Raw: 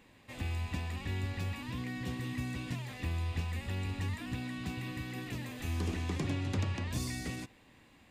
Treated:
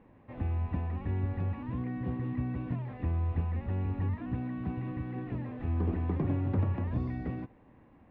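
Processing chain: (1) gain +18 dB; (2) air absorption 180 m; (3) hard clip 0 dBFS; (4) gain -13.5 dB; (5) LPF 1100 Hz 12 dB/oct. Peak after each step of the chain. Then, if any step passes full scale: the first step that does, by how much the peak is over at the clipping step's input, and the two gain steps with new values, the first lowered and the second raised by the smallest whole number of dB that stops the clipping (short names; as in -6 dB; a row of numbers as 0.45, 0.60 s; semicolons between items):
-4.0, -4.5, -4.5, -18.0, -18.5 dBFS; no overload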